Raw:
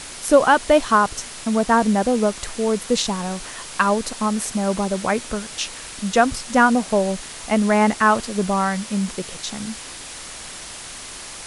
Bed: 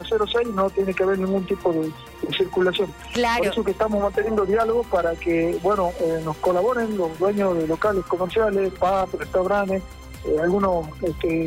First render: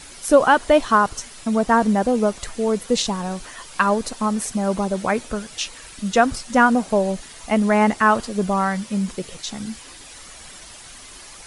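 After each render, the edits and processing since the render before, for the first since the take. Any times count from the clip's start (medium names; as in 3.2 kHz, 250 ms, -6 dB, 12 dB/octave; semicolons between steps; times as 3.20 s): noise reduction 9 dB, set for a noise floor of -36 dBFS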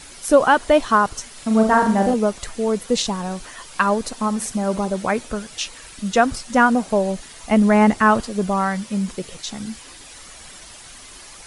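1.32–2.14 s: flutter echo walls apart 7 m, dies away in 0.49 s; 4.11–4.90 s: flutter echo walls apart 11.6 m, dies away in 0.23 s; 7.50–8.22 s: bass shelf 280 Hz +6.5 dB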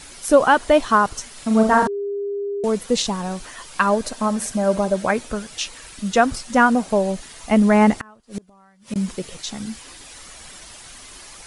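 1.87–2.64 s: bleep 403 Hz -22.5 dBFS; 3.93–5.11 s: small resonant body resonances 610/1600 Hz, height 8 dB; 7.99–8.96 s: inverted gate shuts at -16 dBFS, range -32 dB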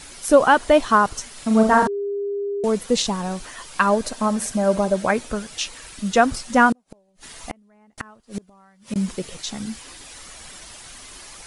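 6.72–7.98 s: inverted gate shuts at -14 dBFS, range -41 dB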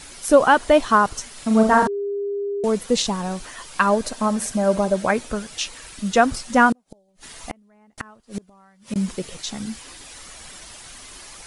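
6.89–7.09 s: time-frequency box 890–3000 Hz -12 dB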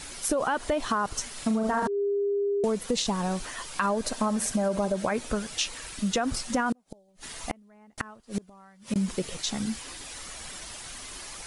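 peak limiter -12 dBFS, peak gain reduction 10.5 dB; compression, threshold -23 dBFS, peak gain reduction 7 dB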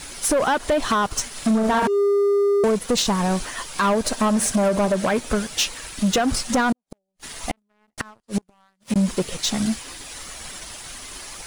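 waveshaping leveller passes 3; upward expansion 1.5:1, over -40 dBFS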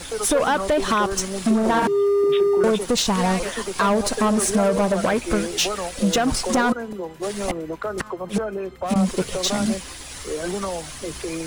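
add bed -7.5 dB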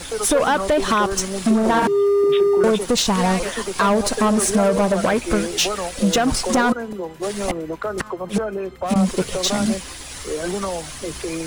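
trim +2 dB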